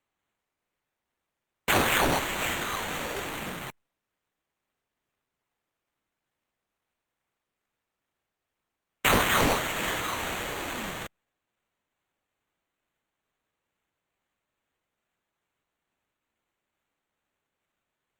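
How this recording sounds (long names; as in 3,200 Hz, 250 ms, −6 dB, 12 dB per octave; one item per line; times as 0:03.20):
phaser sweep stages 2, 2.3 Hz, lowest notch 800–4,800 Hz
aliases and images of a low sample rate 5,100 Hz, jitter 0%
Opus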